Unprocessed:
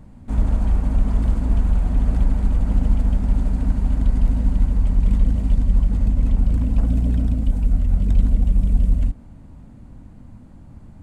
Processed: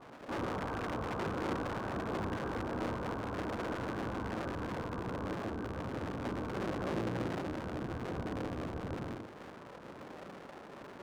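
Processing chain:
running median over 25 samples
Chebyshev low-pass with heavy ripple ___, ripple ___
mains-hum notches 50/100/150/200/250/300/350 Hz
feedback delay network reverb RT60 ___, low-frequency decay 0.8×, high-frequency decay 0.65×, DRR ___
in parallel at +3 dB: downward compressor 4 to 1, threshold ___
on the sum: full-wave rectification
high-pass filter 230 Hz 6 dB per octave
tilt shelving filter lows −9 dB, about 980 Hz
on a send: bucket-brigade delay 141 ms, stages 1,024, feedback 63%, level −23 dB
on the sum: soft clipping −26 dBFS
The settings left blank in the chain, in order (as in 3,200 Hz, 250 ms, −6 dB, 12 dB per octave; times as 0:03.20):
1,600 Hz, 9 dB, 0.88 s, −5.5 dB, −34 dBFS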